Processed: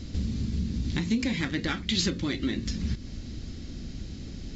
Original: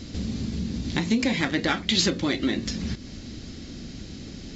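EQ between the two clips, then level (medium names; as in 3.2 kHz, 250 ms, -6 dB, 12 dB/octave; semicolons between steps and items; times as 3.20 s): dynamic bell 690 Hz, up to -7 dB, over -44 dBFS, Q 1.3; bass shelf 110 Hz +12 dB; -5.0 dB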